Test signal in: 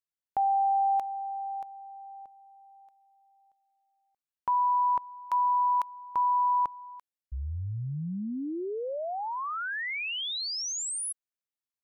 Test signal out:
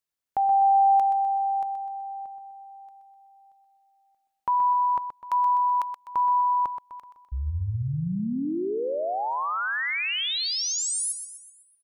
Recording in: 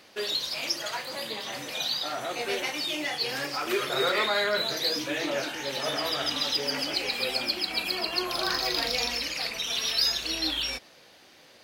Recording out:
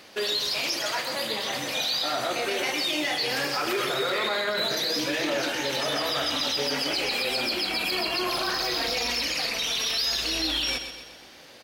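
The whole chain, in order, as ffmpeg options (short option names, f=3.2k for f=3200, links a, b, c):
-af "alimiter=limit=-24dB:level=0:latency=1:release=18,aecho=1:1:126|252|378|504|630|756:0.355|0.174|0.0852|0.0417|0.0205|0.01,volume=5dB"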